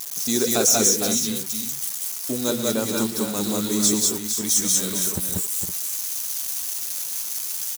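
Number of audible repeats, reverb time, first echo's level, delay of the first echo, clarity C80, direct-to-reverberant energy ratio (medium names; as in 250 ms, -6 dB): 4, no reverb, -13.0 dB, 118 ms, no reverb, no reverb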